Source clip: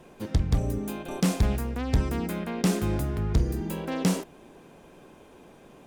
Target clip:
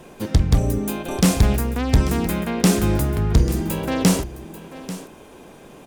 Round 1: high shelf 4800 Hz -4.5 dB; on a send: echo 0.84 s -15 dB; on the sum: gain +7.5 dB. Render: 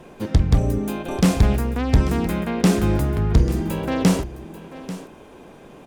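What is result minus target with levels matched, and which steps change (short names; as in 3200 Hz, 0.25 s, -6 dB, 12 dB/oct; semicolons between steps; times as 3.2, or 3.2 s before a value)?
8000 Hz band -6.0 dB
change: high shelf 4800 Hz +4.5 dB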